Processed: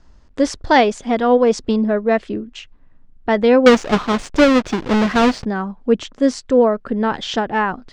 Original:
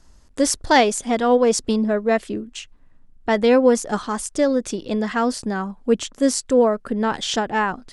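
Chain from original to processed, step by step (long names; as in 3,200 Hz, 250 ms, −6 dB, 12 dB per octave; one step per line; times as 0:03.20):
0:03.66–0:05.45: each half-wave held at its own peak
high-frequency loss of the air 150 metres
level +3 dB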